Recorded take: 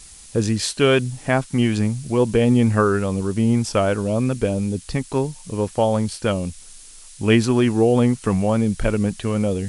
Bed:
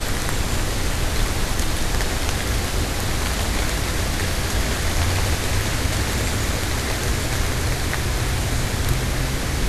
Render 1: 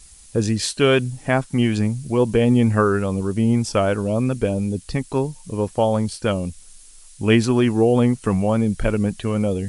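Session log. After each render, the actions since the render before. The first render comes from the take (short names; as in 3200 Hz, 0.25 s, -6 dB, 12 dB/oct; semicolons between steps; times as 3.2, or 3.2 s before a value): denoiser 6 dB, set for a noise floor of -43 dBFS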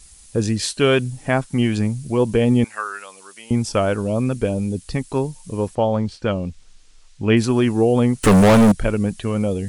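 2.64–3.51 HPF 1400 Hz; 5.75–7.37 air absorption 130 m; 8.23–8.72 sample leveller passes 5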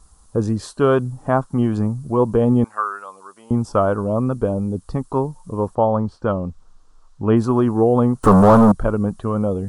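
resonant high shelf 1600 Hz -11 dB, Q 3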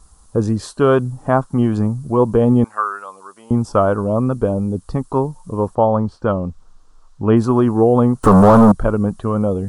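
gain +2.5 dB; limiter -2 dBFS, peak gain reduction 2 dB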